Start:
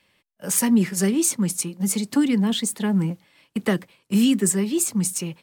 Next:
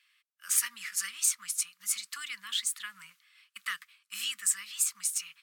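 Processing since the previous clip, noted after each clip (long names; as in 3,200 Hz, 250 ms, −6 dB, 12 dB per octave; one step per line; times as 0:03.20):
elliptic high-pass filter 1,200 Hz, stop band 40 dB
level −3.5 dB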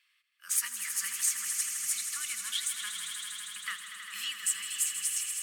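echo that builds up and dies away 80 ms, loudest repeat 5, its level −10 dB
level −2.5 dB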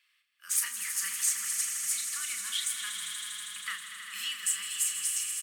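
double-tracking delay 36 ms −6.5 dB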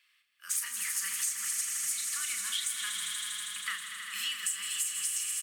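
downward compressor, threshold −31 dBFS, peak gain reduction 8 dB
level +2 dB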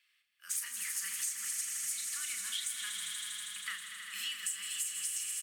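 parametric band 1,100 Hz −5 dB 0.49 octaves
level −4 dB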